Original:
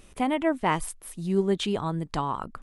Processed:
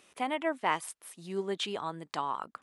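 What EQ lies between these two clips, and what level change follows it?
meter weighting curve A
−3.5 dB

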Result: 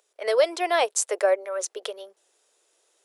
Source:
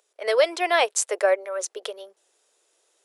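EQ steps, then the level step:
dynamic equaliser 2,200 Hz, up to −5 dB, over −33 dBFS, Q 0.74
0.0 dB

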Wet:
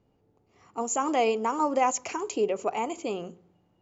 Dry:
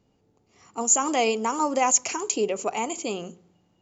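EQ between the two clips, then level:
low-pass filter 1,700 Hz 6 dB per octave
parametric band 210 Hz −3.5 dB 0.74 octaves
0.0 dB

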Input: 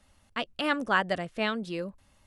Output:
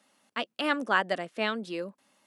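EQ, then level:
high-pass filter 210 Hz 24 dB per octave
0.0 dB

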